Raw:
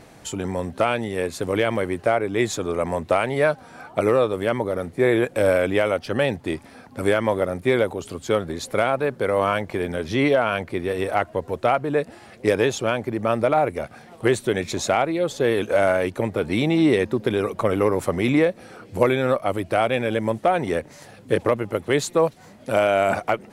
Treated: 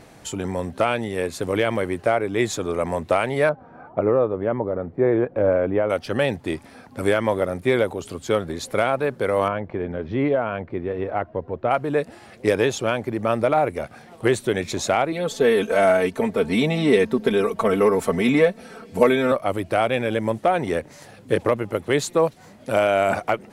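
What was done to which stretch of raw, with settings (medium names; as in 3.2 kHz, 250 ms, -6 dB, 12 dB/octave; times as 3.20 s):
3.49–5.90 s: low-pass 1.1 kHz
9.48–11.71 s: tape spacing loss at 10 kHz 41 dB
15.12–19.32 s: comb 4.5 ms, depth 78%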